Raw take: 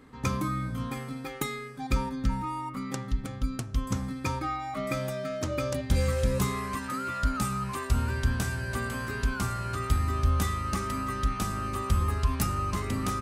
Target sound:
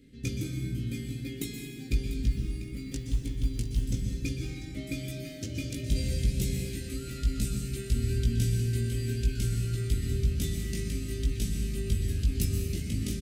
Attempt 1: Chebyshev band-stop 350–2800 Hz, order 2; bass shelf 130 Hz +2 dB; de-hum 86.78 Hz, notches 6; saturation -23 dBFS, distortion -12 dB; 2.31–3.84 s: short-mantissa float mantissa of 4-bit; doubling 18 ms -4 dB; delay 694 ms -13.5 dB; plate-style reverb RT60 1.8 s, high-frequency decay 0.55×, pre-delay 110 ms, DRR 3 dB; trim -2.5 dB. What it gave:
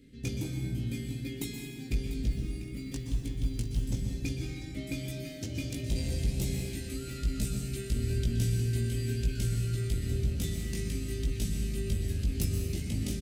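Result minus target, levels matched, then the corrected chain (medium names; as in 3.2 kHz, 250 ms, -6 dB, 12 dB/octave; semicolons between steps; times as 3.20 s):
saturation: distortion +10 dB
Chebyshev band-stop 350–2800 Hz, order 2; bass shelf 130 Hz +2 dB; de-hum 86.78 Hz, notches 6; saturation -15 dBFS, distortion -22 dB; 2.31–3.84 s: short-mantissa float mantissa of 4-bit; doubling 18 ms -4 dB; delay 694 ms -13.5 dB; plate-style reverb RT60 1.8 s, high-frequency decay 0.55×, pre-delay 110 ms, DRR 3 dB; trim -2.5 dB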